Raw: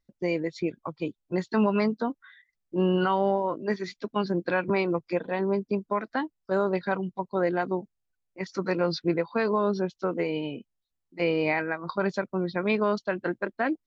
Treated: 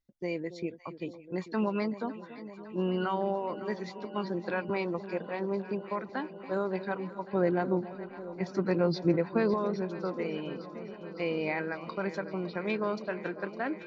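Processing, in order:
0:07.30–0:09.54: low-shelf EQ 450 Hz +10 dB
delay that swaps between a low-pass and a high-pass 279 ms, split 830 Hz, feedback 88%, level −13 dB
level −6.5 dB

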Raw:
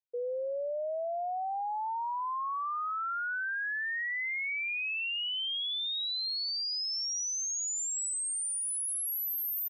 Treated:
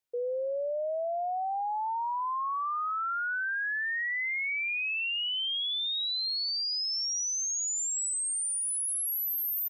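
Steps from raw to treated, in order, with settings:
brickwall limiter −35 dBFS, peak gain reduction 4 dB
level +6.5 dB

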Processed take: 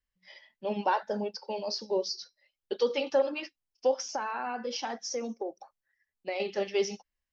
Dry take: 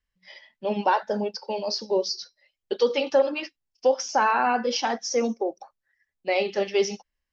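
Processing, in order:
0:04.04–0:06.40: downward compressor 6 to 1, threshold −25 dBFS, peak gain reduction 8 dB
level −5.5 dB

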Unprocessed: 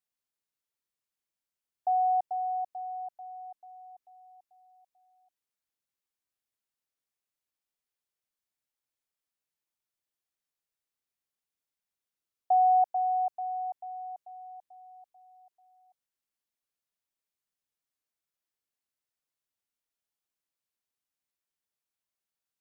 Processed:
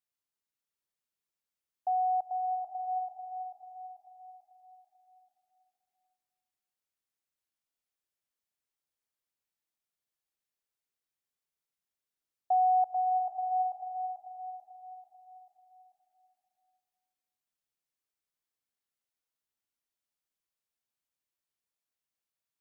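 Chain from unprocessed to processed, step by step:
slow-attack reverb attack 730 ms, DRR 5 dB
level −3 dB

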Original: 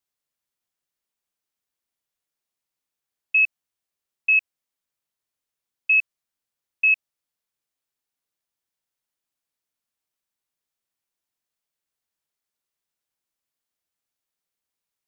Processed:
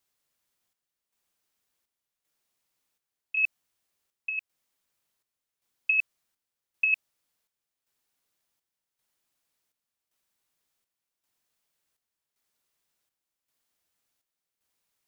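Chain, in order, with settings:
compressor whose output falls as the input rises −21 dBFS, ratio −0.5
square-wave tremolo 0.89 Hz, depth 60%, duty 65%

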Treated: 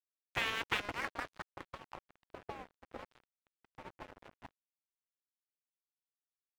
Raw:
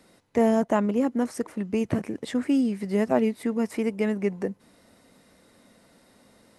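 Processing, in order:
half-wave rectification
low-pass filter sweep 2,900 Hz → 610 Hz, 0:00.75–0:02.08
0:03.07–0:03.65: tuned comb filter 260 Hz, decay 0.46 s, harmonics odd, mix 70%
gate on every frequency bin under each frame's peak −20 dB weak
dead-zone distortion −46.5 dBFS
level +5 dB

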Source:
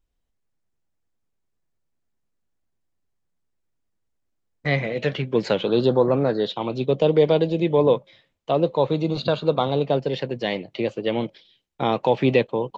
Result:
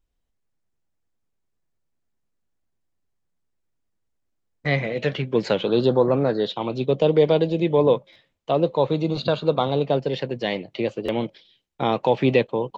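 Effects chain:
buffer that repeats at 0:08.12/0:11.05, samples 512, times 2

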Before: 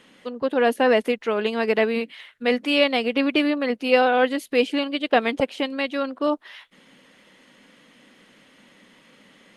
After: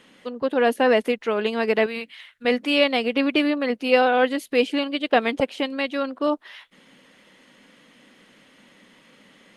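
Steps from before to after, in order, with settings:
0:01.86–0:02.45: parametric band 330 Hz −10 dB 2.4 octaves

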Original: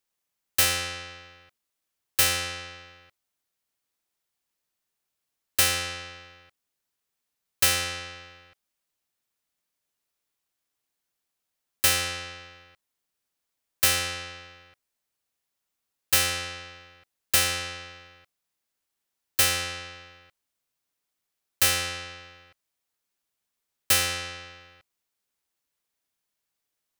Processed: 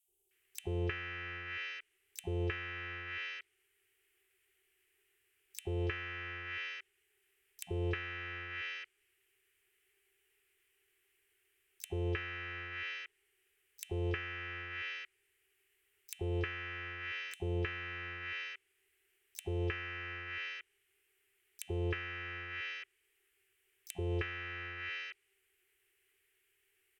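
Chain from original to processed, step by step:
drawn EQ curve 100 Hz 0 dB, 240 Hz −28 dB, 390 Hz +15 dB, 650 Hz −24 dB, 1,900 Hz +7 dB, 3,000 Hz +7 dB, 4,700 Hz −22 dB, 8,300 Hz −2 dB
three-band delay without the direct sound highs, lows, mids 80/310 ms, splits 540/4,200 Hz
downward compressor 10 to 1, threshold −34 dBFS, peak gain reduction 15 dB
pitch-shifted copies added +12 semitones −15 dB
treble cut that deepens with the level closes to 1,000 Hz, closed at −37 dBFS
level +8.5 dB

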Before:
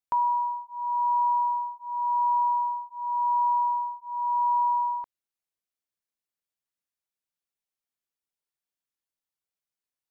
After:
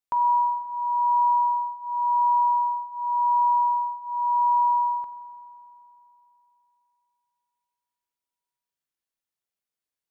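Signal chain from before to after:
spring reverb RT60 3.2 s, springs 41 ms, chirp 30 ms, DRR 6.5 dB

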